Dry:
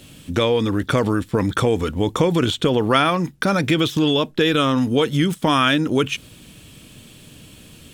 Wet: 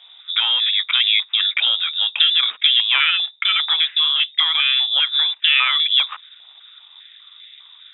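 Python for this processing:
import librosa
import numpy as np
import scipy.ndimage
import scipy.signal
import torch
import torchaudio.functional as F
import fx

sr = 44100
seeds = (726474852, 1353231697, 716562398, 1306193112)

y = scipy.ndimage.median_filter(x, 15, mode='constant')
y = fx.freq_invert(y, sr, carrier_hz=3700)
y = fx.filter_held_highpass(y, sr, hz=5.0, low_hz=790.0, high_hz=2000.0)
y = y * librosa.db_to_amplitude(-1.0)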